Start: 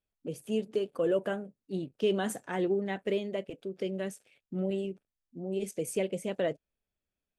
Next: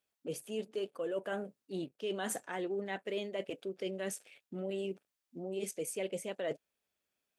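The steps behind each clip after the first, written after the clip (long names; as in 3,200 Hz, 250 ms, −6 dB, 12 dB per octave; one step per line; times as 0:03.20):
high-pass filter 500 Hz 6 dB per octave
reversed playback
downward compressor, threshold −41 dBFS, peak gain reduction 13.5 dB
reversed playback
level +6.5 dB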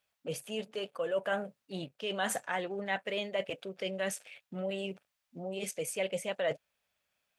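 drawn EQ curve 140 Hz 0 dB, 360 Hz −11 dB, 560 Hz 0 dB, 2,500 Hz +2 dB, 8,700 Hz −4 dB
level +6 dB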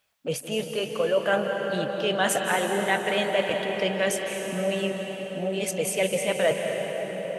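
convolution reverb RT60 6.2 s, pre-delay 152 ms, DRR 2 dB
level +8.5 dB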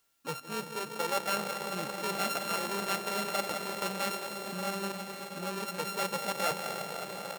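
samples sorted by size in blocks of 32 samples
background noise white −66 dBFS
single-tap delay 1,117 ms −15 dB
level −8.5 dB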